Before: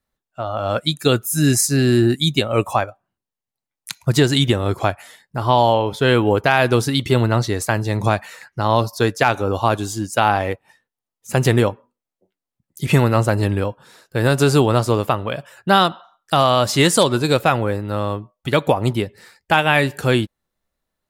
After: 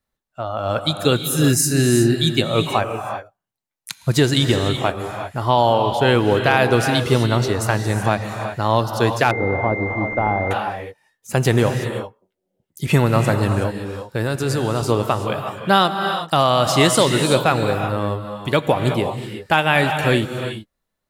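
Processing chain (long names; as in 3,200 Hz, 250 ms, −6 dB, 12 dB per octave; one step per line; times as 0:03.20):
0:14.16–0:14.83: output level in coarse steps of 10 dB
reverb whose tail is shaped and stops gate 400 ms rising, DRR 5.5 dB
0:09.31–0:10.51: switching amplifier with a slow clock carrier 2,100 Hz
level −1 dB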